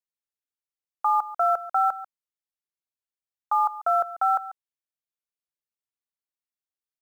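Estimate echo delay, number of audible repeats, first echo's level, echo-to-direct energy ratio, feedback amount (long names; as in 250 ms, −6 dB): 141 ms, 1, −15.5 dB, −15.5 dB, repeats not evenly spaced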